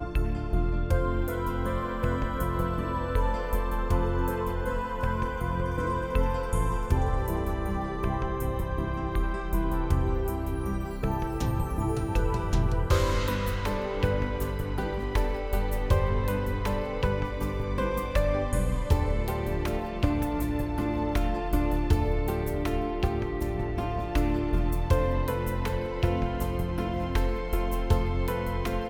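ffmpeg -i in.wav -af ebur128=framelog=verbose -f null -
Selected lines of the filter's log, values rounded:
Integrated loudness:
  I:         -29.1 LUFS
  Threshold: -39.1 LUFS
Loudness range:
  LRA:         1.4 LU
  Threshold: -49.1 LUFS
  LRA low:   -30.0 LUFS
  LRA high:  -28.5 LUFS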